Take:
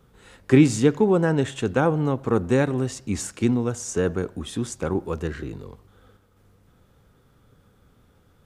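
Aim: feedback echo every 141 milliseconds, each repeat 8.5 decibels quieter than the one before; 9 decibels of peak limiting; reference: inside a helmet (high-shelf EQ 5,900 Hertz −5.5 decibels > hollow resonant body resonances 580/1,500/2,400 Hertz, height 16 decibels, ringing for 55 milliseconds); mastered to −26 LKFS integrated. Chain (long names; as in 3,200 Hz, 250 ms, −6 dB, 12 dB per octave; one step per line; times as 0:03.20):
brickwall limiter −12.5 dBFS
high-shelf EQ 5,900 Hz −5.5 dB
repeating echo 141 ms, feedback 38%, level −8.5 dB
hollow resonant body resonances 580/1,500/2,400 Hz, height 16 dB, ringing for 55 ms
level −3.5 dB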